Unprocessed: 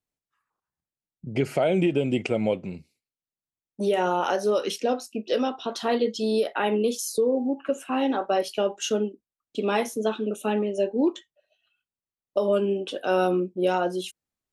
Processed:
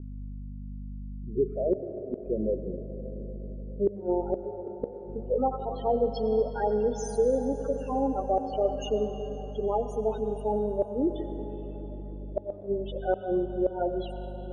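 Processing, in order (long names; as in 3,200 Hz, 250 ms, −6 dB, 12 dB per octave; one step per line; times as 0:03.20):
bass and treble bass −11 dB, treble −3 dB
harmonic and percussive parts rebalanced percussive −7 dB
0:03.88–0:04.96: parametric band 460 Hz 0 dB → +8 dB 1.3 octaves
spectral peaks only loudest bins 8
mains hum 50 Hz, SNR 11 dB
low-pass filter sweep 400 Hz → 8,700 Hz, 0:04.95–0:06.47
gate with flip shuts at −15 dBFS, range −28 dB
dense smooth reverb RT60 5 s, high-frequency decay 0.65×, pre-delay 80 ms, DRR 7.5 dB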